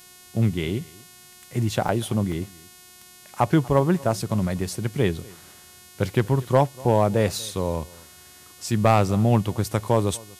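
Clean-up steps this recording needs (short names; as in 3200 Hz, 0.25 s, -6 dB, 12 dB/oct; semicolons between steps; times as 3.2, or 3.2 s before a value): clip repair -8 dBFS; de-hum 362.7 Hz, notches 37; interpolate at 1.88/2.32/4.61, 4 ms; inverse comb 0.241 s -23.5 dB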